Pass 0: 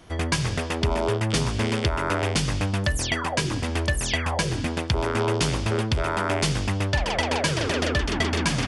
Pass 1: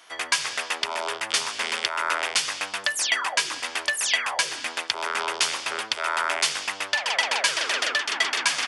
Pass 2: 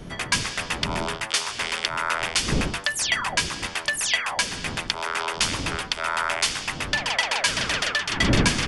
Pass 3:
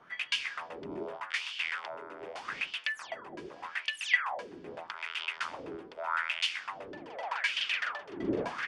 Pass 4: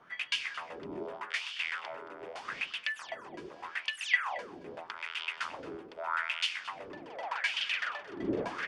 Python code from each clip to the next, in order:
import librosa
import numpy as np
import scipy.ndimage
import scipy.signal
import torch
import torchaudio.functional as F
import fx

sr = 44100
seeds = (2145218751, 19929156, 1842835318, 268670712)

y1 = scipy.signal.sosfilt(scipy.signal.butter(2, 1100.0, 'highpass', fs=sr, output='sos'), x)
y1 = y1 * 10.0 ** (4.5 / 20.0)
y2 = fx.dmg_wind(y1, sr, seeds[0], corner_hz=250.0, level_db=-32.0)
y3 = fx.wah_lfo(y2, sr, hz=0.82, low_hz=340.0, high_hz=3000.0, q=4.4)
y4 = y3 + 10.0 ** (-18.0 / 20.0) * np.pad(y3, (int(223 * sr / 1000.0), 0))[:len(y3)]
y4 = y4 * 10.0 ** (-1.0 / 20.0)